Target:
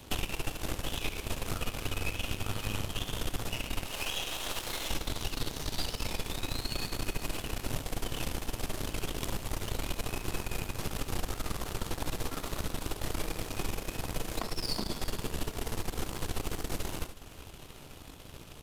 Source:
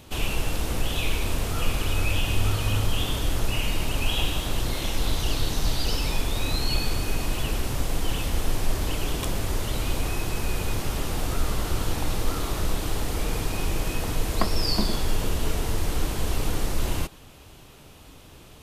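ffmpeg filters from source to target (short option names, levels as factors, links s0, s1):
-filter_complex "[0:a]asettb=1/sr,asplit=3[s0][s1][s2];[s0]atrim=end=3.854[s3];[s1]atrim=start=3.85:end=4.9,asetpts=PTS-STARTPTS,afade=t=in:d=0.004:c=qsin,afade=t=out:st=1.046:d=0.004:c=qsin,acrossover=split=410[s4][s5];[s4]acompressor=threshold=0.0126:ratio=6[s6];[s6][s5]amix=inputs=2:normalize=0[s7];[s2]atrim=start=4.896[s8];[s3][s7]acrossfade=d=0.004:c1=hsin:c2=qsin[s9];[s9][s8]acrossfade=d=0.004:c1=qsin:c2=hsin,acrossover=split=110|930|2500[s10][s11][s12][s13];[s10]alimiter=limit=0.0841:level=0:latency=1:release=344[s14];[s14][s11][s12][s13]amix=inputs=4:normalize=0,acompressor=threshold=0.0141:ratio=4,aeval=exprs='0.0841*(cos(1*acos(clip(val(0)/0.0841,-1,1)))-cos(1*PI/2))+0.015*(cos(4*acos(clip(val(0)/0.0841,-1,1)))-cos(4*PI/2))+0.0106*(cos(5*acos(clip(val(0)/0.0841,-1,1)))-cos(5*PI/2))+0.0211*(cos(6*acos(clip(val(0)/0.0841,-1,1)))-cos(6*PI/2))+0.0133*(cos(7*acos(clip(val(0)/0.0841,-1,1)))-cos(7*PI/2))':c=same,aecho=1:1:73|368:0.251|0.168,volume=1.41"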